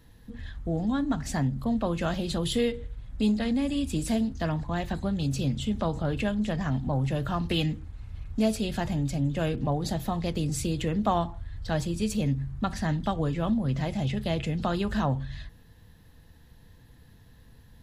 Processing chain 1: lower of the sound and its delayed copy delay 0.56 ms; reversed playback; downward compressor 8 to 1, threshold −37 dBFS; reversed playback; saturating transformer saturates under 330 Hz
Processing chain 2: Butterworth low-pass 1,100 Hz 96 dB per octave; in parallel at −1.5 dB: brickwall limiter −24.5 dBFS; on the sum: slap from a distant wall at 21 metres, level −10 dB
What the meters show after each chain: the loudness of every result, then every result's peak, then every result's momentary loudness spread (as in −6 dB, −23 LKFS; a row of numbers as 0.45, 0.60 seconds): −44.0, −25.0 LKFS; −29.5, −11.5 dBFS; 14, 6 LU